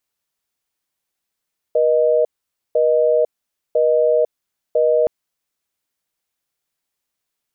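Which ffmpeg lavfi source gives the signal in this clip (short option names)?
-f lavfi -i "aevalsrc='0.178*(sin(2*PI*480*t)+sin(2*PI*620*t))*clip(min(mod(t,1),0.5-mod(t,1))/0.005,0,1)':d=3.32:s=44100"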